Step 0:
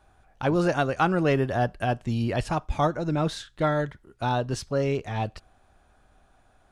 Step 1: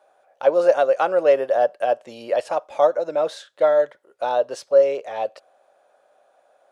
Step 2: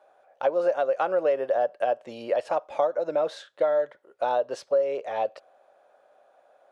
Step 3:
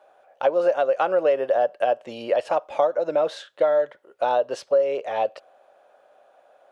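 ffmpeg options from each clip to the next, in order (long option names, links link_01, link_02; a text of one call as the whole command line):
ffmpeg -i in.wav -af "highpass=frequency=550:width_type=q:width=6.6,volume=-2dB" out.wav
ffmpeg -i in.wav -af "highshelf=frequency=5200:gain=-10.5,acompressor=threshold=-21dB:ratio=4" out.wav
ffmpeg -i in.wav -af "equalizer=frequency=2900:width=3.8:gain=4,volume=3.5dB" out.wav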